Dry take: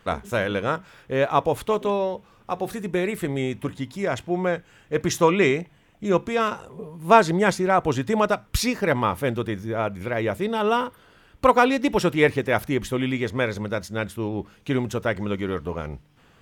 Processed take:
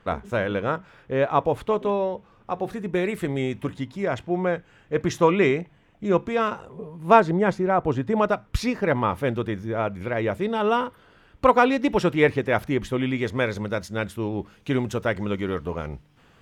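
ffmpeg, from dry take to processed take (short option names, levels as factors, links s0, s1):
-af "asetnsamples=n=441:p=0,asendcmd='2.95 lowpass f 5400;3.84 lowpass f 2600;7.2 lowpass f 1100;8.16 lowpass f 2100;9.09 lowpass f 3500;13.18 lowpass f 8900',lowpass=f=2100:p=1"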